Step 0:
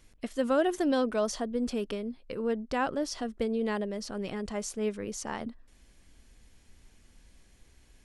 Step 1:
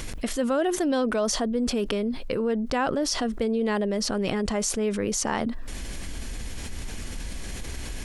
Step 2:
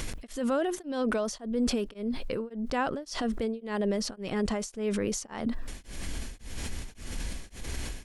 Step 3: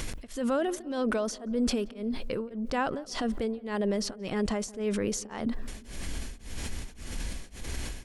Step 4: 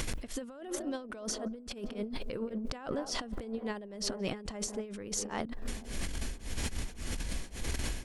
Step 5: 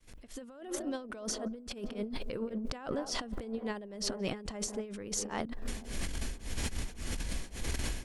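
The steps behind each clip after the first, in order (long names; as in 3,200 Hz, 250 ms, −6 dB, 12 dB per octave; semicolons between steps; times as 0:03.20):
envelope flattener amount 70%
brickwall limiter −19 dBFS, peak gain reduction 8 dB; tremolo along a rectified sine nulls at 1.8 Hz
feedback echo with a low-pass in the loop 177 ms, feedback 68%, low-pass 1,300 Hz, level −21 dB
delay with a band-pass on its return 217 ms, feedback 64%, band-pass 550 Hz, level −19 dB; compressor whose output falls as the input rises −34 dBFS, ratio −0.5; level −1.5 dB
fade in at the beginning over 0.77 s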